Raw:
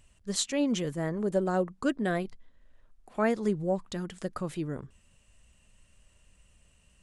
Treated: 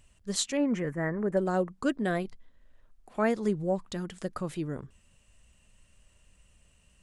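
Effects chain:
0:00.57–0:01.37: high shelf with overshoot 2,600 Hz −11 dB, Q 3

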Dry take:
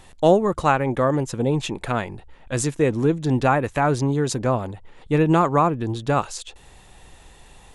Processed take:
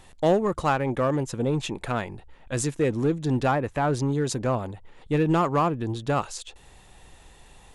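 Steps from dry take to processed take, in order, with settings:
0:03.51–0:03.93: high-shelf EQ 2,600 Hz −8 dB
in parallel at −10.5 dB: wave folding −16 dBFS
on the sum: level −5.5 dB

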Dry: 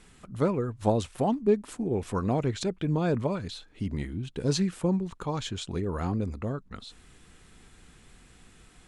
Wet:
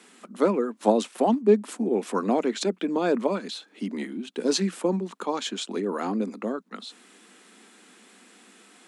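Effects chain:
Butterworth high-pass 200 Hz 72 dB per octave
level +5 dB

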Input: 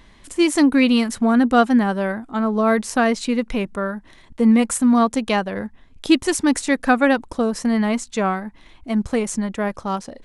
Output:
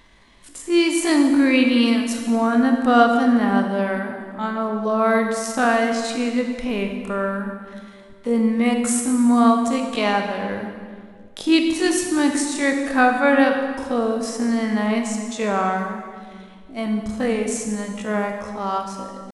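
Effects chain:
low-shelf EQ 230 Hz −6.5 dB
tempo change 0.53×
convolution reverb RT60 1.9 s, pre-delay 24 ms, DRR 3.5 dB
level −1 dB

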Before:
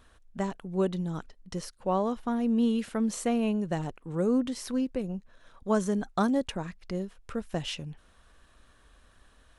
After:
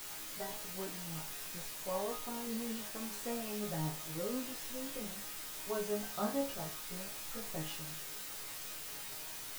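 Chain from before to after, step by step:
multi-voice chorus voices 4, 0.27 Hz, delay 15 ms, depth 3.2 ms
bit-depth reduction 6 bits, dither triangular
resonators tuned to a chord G#2 sus4, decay 0.32 s
dynamic equaliser 660 Hz, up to +4 dB, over −60 dBFS, Q 1.4
level +4.5 dB

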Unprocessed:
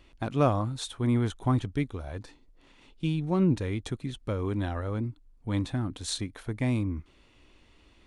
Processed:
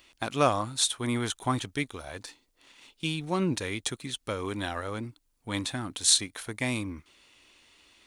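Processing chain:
spectral tilt +3.5 dB per octave
in parallel at −6 dB: dead-zone distortion −52.5 dBFS

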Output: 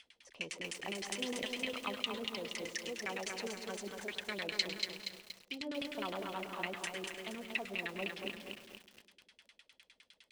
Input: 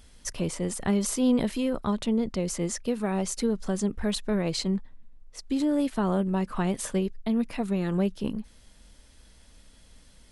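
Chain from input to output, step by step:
first difference
convolution reverb RT60 1.9 s, pre-delay 102 ms, DRR 8.5 dB
auto-filter low-pass saw down 9.8 Hz 300–2,400 Hz
high shelf with overshoot 2,000 Hz +9.5 dB, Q 1.5
feedback echo at a low word length 236 ms, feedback 55%, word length 10 bits, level −4 dB
level +6 dB

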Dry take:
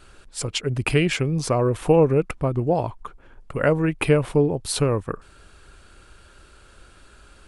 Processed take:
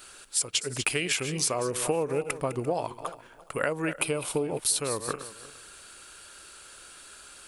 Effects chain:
feedback delay that plays each chunk backwards 172 ms, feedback 41%, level −14 dB
RIAA equalisation recording
downward compressor 6 to 1, threshold −24 dBFS, peak gain reduction 12 dB
0:03.98–0:04.47: parametric band 1,800 Hz −12 dB 0.39 octaves

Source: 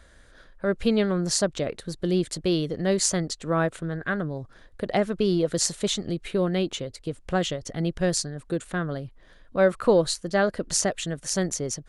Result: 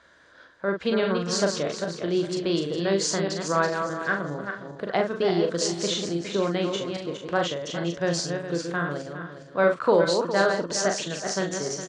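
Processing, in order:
feedback delay that plays each chunk backwards 205 ms, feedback 51%, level −5.5 dB
loudspeaker in its box 170–6,500 Hz, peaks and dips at 220 Hz −4 dB, 1,000 Hz +7 dB, 1,500 Hz +4 dB
double-tracking delay 41 ms −5.5 dB
level −1.5 dB

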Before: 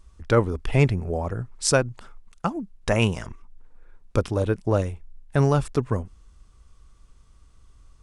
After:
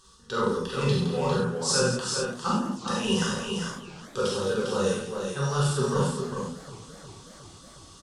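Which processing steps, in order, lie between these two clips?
meter weighting curve D
reversed playback
downward compressor 6 to 1, threshold −32 dBFS, peak gain reduction 19.5 dB
reversed playback
phaser with its sweep stopped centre 440 Hz, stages 8
on a send: multi-tap delay 42/167/402/438 ms −4.5/−9.5/−6/−8.5 dB
on the sum: reverb whose tail is shaped and stops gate 120 ms flat, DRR −4.5 dB
feedback echo with a swinging delay time 367 ms, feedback 70%, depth 174 cents, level −18.5 dB
level +4.5 dB

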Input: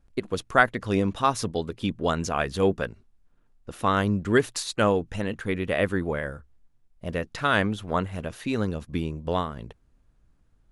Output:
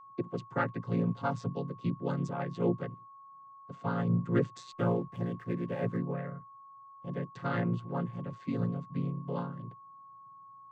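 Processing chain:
channel vocoder with a chord as carrier minor triad, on A#2
0:04.72–0:05.98: slack as between gear wheels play −52.5 dBFS
steady tone 1,100 Hz −44 dBFS
level −6 dB

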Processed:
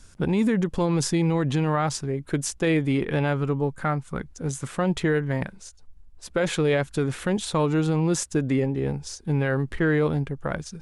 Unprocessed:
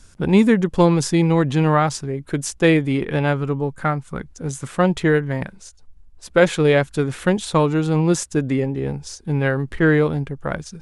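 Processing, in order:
brickwall limiter −12.5 dBFS, peak gain reduction 10.5 dB
level −2 dB

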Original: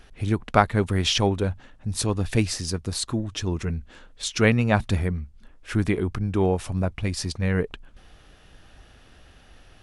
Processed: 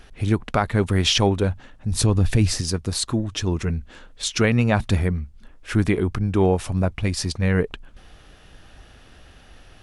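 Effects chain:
0:01.92–0:02.61: low-shelf EQ 220 Hz +8.5 dB
boost into a limiter +10 dB
level −6.5 dB

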